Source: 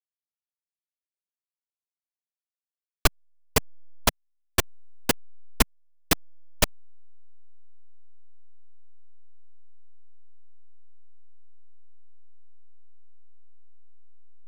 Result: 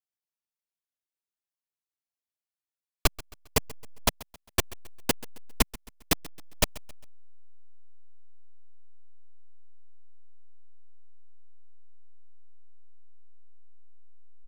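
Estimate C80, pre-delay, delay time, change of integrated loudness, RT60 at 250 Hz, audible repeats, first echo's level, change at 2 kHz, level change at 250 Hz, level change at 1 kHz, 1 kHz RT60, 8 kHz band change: no reverb, no reverb, 134 ms, -2.5 dB, no reverb, 2, -20.0 dB, -4.0 dB, -2.5 dB, -3.5 dB, no reverb, -2.5 dB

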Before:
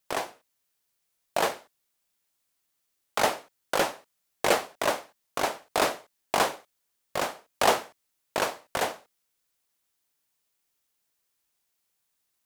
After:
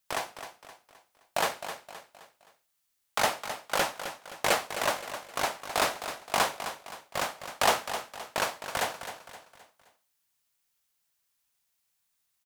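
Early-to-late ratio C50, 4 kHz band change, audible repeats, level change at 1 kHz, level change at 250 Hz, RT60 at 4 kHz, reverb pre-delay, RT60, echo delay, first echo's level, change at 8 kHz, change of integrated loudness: no reverb, +0.5 dB, 4, -1.5 dB, -5.0 dB, no reverb, no reverb, no reverb, 261 ms, -10.5 dB, +0.5 dB, -2.0 dB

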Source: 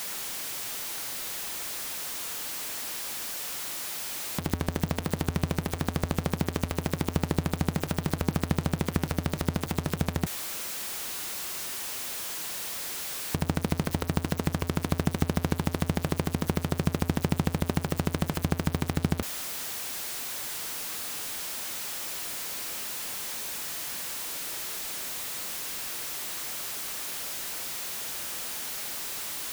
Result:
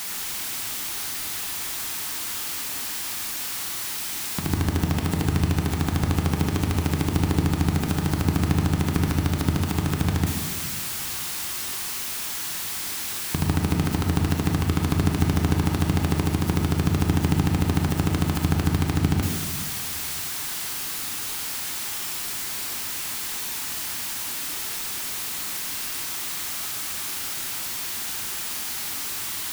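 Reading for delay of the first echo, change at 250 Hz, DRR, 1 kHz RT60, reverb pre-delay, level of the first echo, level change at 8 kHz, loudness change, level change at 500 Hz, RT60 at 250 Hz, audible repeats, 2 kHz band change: no echo, +5.5 dB, 2.0 dB, 1.7 s, 23 ms, no echo, +5.0 dB, +5.5 dB, +1.5 dB, 2.1 s, no echo, +4.5 dB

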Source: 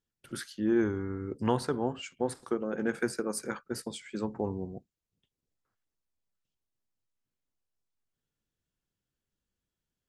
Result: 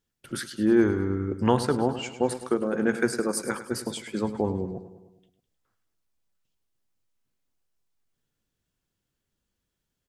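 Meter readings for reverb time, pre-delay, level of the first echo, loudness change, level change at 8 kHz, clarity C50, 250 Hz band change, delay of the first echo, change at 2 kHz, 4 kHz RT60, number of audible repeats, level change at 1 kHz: no reverb, no reverb, -13.0 dB, +6.5 dB, +6.5 dB, no reverb, +6.5 dB, 103 ms, +6.5 dB, no reverb, 5, +6.5 dB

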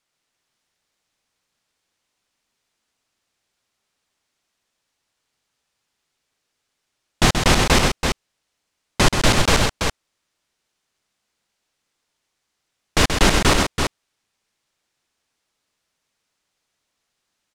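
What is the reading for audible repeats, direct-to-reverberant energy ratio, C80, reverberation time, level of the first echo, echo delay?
2, no reverb, no reverb, no reverb, -6.5 dB, 130 ms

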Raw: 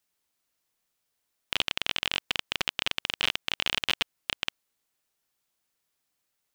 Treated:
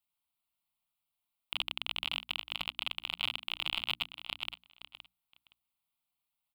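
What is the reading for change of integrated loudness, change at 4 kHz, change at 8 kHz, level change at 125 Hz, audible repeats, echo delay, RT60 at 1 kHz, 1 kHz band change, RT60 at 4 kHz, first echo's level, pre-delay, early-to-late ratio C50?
-6.5 dB, -6.0 dB, -15.5 dB, -7.0 dB, 2, 518 ms, no reverb, -6.5 dB, no reverb, -12.0 dB, no reverb, no reverb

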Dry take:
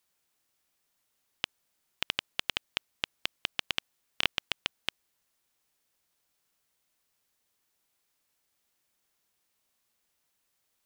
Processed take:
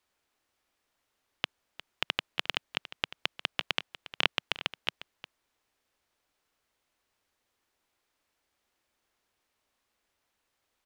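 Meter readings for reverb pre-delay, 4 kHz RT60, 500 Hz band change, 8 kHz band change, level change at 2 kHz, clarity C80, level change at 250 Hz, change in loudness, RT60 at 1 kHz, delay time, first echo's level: no reverb, no reverb, +4.0 dB, -4.0 dB, +2.0 dB, no reverb, +3.0 dB, +1.0 dB, no reverb, 355 ms, -15.5 dB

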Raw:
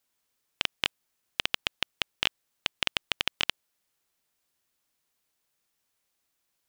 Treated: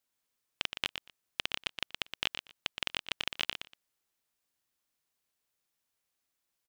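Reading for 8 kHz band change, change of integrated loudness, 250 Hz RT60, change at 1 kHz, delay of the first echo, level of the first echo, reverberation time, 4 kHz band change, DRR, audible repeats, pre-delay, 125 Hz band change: -5.5 dB, -5.5 dB, no reverb, -5.5 dB, 119 ms, -8.0 dB, no reverb, -5.5 dB, no reverb, 2, no reverb, -5.5 dB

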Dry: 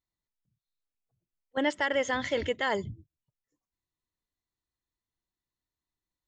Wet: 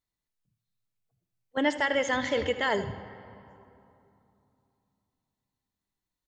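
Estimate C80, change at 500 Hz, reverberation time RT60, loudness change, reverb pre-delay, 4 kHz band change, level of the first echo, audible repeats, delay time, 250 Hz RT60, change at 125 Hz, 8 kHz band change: 13.5 dB, +1.5 dB, 3.0 s, +1.5 dB, 4 ms, +2.0 dB, -14.5 dB, 1, 79 ms, 3.5 s, +2.0 dB, +2.0 dB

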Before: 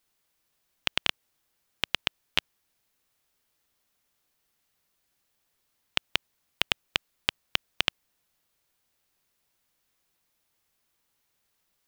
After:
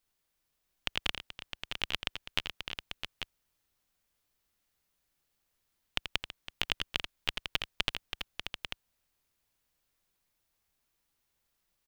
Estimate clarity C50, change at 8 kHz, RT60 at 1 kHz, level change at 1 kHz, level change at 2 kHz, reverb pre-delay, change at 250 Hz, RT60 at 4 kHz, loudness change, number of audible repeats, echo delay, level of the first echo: no reverb, -4.5 dB, no reverb, -4.5 dB, -4.5 dB, no reverb, -3.5 dB, no reverb, -6.5 dB, 4, 84 ms, -9.5 dB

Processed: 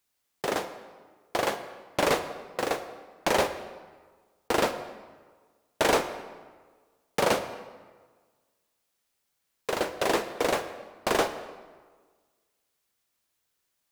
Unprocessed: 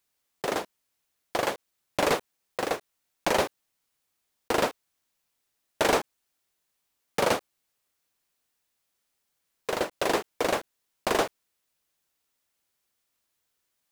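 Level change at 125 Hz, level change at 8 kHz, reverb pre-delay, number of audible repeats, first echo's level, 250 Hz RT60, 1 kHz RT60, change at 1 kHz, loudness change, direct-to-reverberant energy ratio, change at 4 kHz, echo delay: +0.5 dB, +0.5 dB, 14 ms, no echo, no echo, 1.5 s, 1.5 s, +0.5 dB, 0.0 dB, 9.0 dB, +0.5 dB, no echo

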